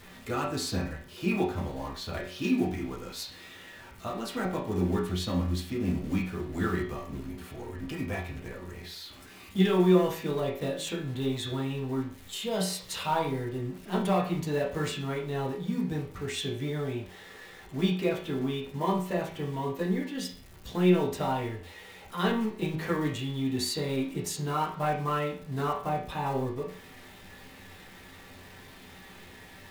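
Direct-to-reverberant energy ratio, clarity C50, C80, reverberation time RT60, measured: -5.0 dB, 6.0 dB, 11.0 dB, 0.45 s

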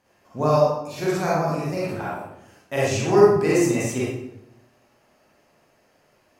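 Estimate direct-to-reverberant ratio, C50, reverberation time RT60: -7.0 dB, -3.0 dB, 0.85 s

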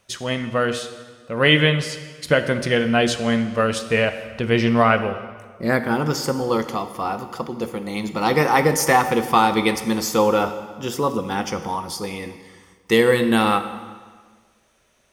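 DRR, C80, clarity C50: 8.5 dB, 12.0 dB, 10.5 dB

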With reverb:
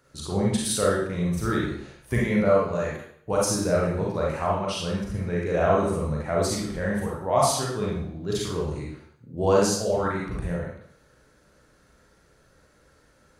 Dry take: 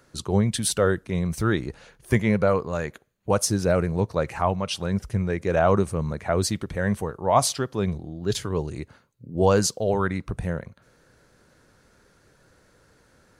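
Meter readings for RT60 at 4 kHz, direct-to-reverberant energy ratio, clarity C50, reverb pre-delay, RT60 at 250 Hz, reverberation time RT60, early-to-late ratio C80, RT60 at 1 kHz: 0.55 s, -4.5 dB, 0.0 dB, 34 ms, 0.55 s, 0.65 s, 5.0 dB, 0.65 s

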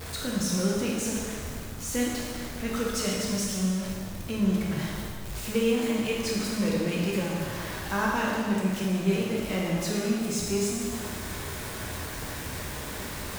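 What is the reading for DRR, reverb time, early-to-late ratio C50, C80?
-4.0 dB, 1.9 s, -0.5 dB, 1.0 dB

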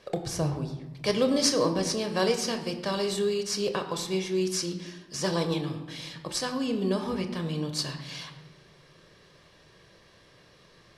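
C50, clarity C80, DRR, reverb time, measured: 10.0 dB, 11.5 dB, 6.0 dB, 1.2 s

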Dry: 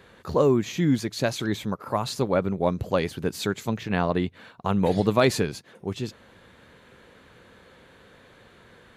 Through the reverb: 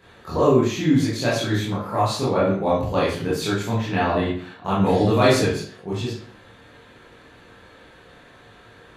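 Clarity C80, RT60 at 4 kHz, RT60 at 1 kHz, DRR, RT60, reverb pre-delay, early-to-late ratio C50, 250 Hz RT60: 6.5 dB, 0.45 s, 0.50 s, -9.0 dB, 0.55 s, 19 ms, 1.5 dB, 0.55 s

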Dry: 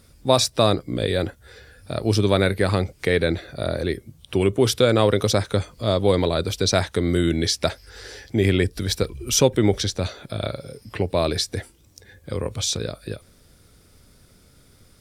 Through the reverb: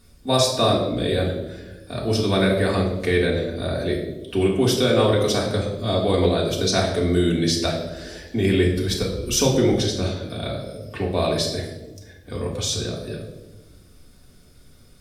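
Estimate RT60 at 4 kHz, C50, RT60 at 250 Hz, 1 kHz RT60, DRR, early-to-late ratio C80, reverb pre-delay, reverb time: 0.75 s, 5.5 dB, 1.6 s, 0.90 s, -4.0 dB, 7.5 dB, 3 ms, 1.1 s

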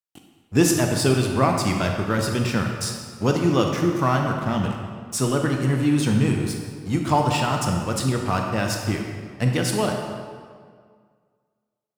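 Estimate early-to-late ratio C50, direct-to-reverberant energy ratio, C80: 3.5 dB, 2.0 dB, 5.0 dB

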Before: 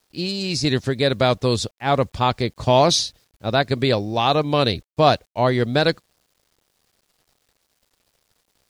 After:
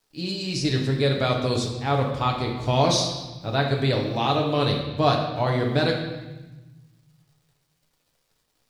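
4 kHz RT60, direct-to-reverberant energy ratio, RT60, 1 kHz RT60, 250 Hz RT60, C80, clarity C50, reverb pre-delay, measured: 1.1 s, 0.0 dB, 1.1 s, 1.1 s, 1.7 s, 7.0 dB, 5.0 dB, 6 ms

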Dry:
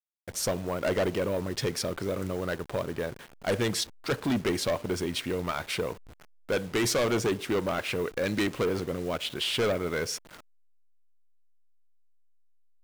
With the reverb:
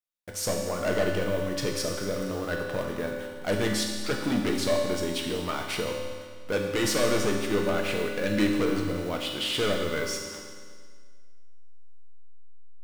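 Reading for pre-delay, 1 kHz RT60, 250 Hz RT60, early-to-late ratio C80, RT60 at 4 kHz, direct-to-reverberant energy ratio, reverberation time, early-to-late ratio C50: 3 ms, 1.8 s, 1.8 s, 4.0 dB, 1.7 s, 0.0 dB, 1.8 s, 2.5 dB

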